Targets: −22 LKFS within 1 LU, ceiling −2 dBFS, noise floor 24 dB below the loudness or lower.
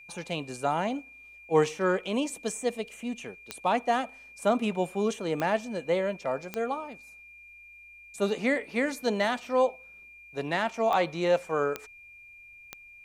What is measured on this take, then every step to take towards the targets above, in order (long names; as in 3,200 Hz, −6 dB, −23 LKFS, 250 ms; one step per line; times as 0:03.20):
number of clicks 6; interfering tone 2,400 Hz; level of the tone −48 dBFS; integrated loudness −29.0 LKFS; sample peak −9.5 dBFS; target loudness −22.0 LKFS
→ click removal
notch filter 2,400 Hz, Q 30
level +7 dB